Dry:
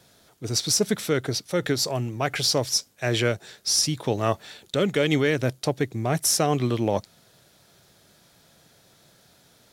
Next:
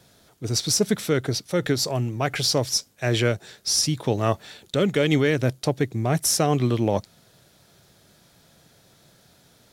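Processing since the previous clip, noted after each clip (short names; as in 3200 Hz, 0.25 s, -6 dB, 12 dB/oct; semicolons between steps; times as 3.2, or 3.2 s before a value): low shelf 280 Hz +4 dB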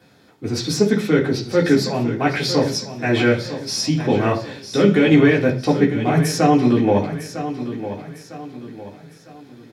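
feedback echo 0.954 s, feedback 39%, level -11.5 dB; reverb RT60 0.45 s, pre-delay 3 ms, DRR -4 dB; gain -7 dB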